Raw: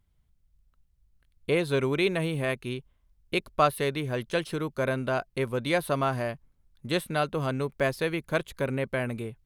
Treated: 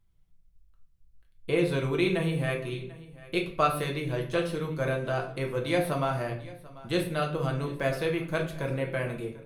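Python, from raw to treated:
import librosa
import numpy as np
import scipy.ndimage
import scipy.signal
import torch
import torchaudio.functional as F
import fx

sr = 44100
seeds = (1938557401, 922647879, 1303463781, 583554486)

p1 = x + 0.33 * np.pad(x, (int(6.0 * sr / 1000.0), 0))[:len(x)]
p2 = p1 + fx.echo_single(p1, sr, ms=741, db=-19.5, dry=0)
p3 = fx.room_shoebox(p2, sr, seeds[0], volume_m3=64.0, walls='mixed', distance_m=0.59)
y = p3 * librosa.db_to_amplitude(-4.5)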